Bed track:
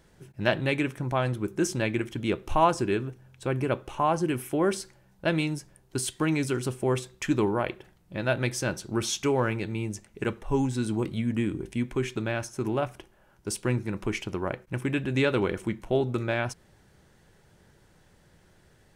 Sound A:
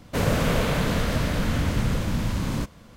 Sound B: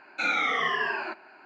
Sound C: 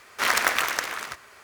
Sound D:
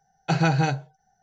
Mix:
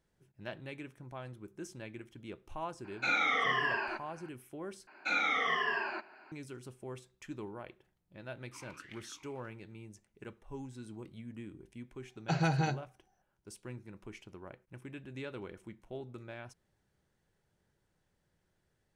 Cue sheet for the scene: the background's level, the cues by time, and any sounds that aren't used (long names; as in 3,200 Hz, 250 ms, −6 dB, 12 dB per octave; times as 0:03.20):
bed track −18.5 dB
0:02.84: mix in B −4 dB
0:04.87: overwrite with B −5 dB
0:08.33: mix in C −15.5 dB + formant filter swept between two vowels i-u 1.6 Hz
0:12.00: mix in D −9 dB
not used: A